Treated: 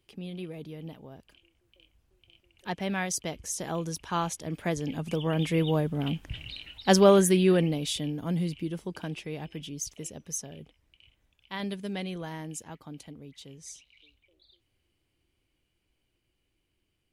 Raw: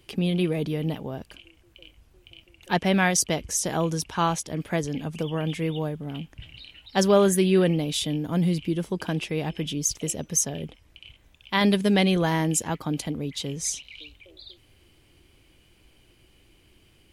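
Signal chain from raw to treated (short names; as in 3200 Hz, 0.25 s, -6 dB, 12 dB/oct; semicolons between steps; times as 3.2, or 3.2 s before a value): Doppler pass-by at 6.21, 5 m/s, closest 3.4 m; gain +4.5 dB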